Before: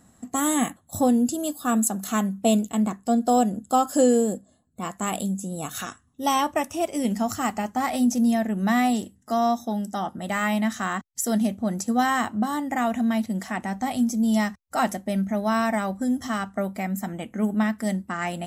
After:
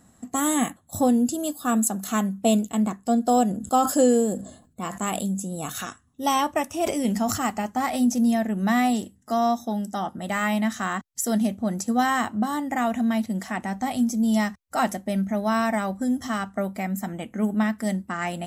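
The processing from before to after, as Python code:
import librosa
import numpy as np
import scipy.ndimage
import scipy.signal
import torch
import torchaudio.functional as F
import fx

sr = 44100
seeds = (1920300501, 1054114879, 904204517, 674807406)

y = fx.sustainer(x, sr, db_per_s=95.0, at=(3.45, 5.84))
y = fx.sustainer(y, sr, db_per_s=58.0, at=(6.83, 7.45))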